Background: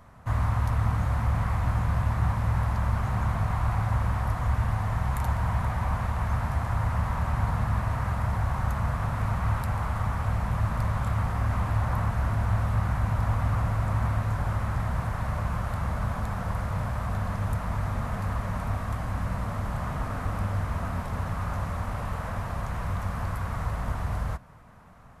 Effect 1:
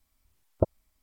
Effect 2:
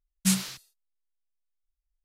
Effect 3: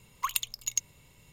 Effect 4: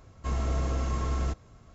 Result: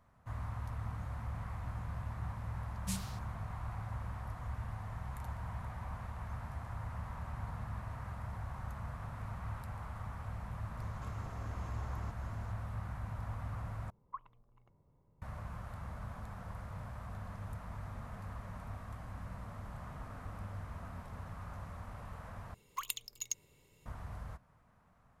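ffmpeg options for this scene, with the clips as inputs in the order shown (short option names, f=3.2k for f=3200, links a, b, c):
-filter_complex "[3:a]asplit=2[a][b];[0:a]volume=-15.5dB[c];[4:a]acompressor=threshold=-45dB:ratio=6:attack=3.2:release=140:knee=1:detection=peak[d];[a]lowpass=f=1.1k:w=0.5412,lowpass=f=1.1k:w=1.3066[e];[b]equalizer=f=410:t=o:w=0.81:g=8.5[f];[c]asplit=3[g][h][i];[g]atrim=end=13.904[j];[e]atrim=end=1.32,asetpts=PTS-STARTPTS,volume=-9.5dB[k];[h]atrim=start=15.216:end=22.544[l];[f]atrim=end=1.32,asetpts=PTS-STARTPTS,volume=-9dB[m];[i]atrim=start=23.856[n];[2:a]atrim=end=2.04,asetpts=PTS-STARTPTS,volume=-16dB,afade=t=in:d=0.004:c=hsin,afade=t=out:st=2.036:d=0.004:c=hsin,adelay=2620[o];[d]atrim=end=1.74,asetpts=PTS-STARTPTS,volume=-1dB,afade=t=in:d=0.004:c=hsin,afade=t=out:st=1.736:d=0.004:c=hsin,adelay=10780[p];[j][k]acrossfade=d=0.004:c1=hsin:c2=hsin[q];[q][l]acrossfade=d=0.004:c1=hsin:c2=hsin[r];[r][m]acrossfade=d=0.004:c1=hsin:c2=hsin[s];[s][n]acrossfade=d=0.004:c1=hsin:c2=hsin[t];[t][o][p]amix=inputs=3:normalize=0"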